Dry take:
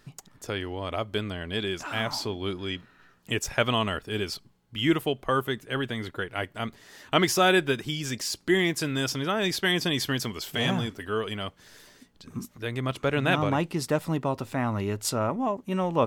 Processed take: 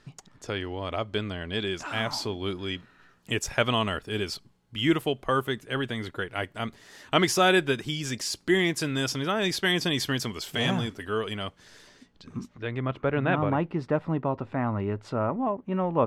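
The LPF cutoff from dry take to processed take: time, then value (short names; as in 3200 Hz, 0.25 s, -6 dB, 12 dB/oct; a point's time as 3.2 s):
1.47 s 7000 Hz
2.14 s 12000 Hz
11.31 s 12000 Hz
12.36 s 4900 Hz
12.96 s 1800 Hz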